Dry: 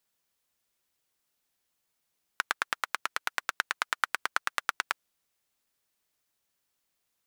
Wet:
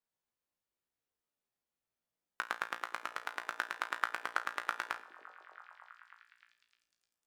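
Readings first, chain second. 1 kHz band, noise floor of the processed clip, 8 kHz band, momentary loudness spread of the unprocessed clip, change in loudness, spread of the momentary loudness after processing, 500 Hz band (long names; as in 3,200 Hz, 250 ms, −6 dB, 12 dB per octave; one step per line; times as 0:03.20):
−5.0 dB, below −85 dBFS, −12.5 dB, 4 LU, −6.0 dB, 19 LU, −2.5 dB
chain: high-shelf EQ 2,100 Hz −10.5 dB
tuned comb filter 58 Hz, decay 0.35 s, harmonics all, mix 90%
on a send: echo through a band-pass that steps 304 ms, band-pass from 320 Hz, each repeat 0.7 octaves, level −5 dB
on the sum: four-comb reverb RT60 1.4 s, combs from 32 ms, DRR 16.5 dB
expander for the loud parts 1.5 to 1, over −51 dBFS
level +7.5 dB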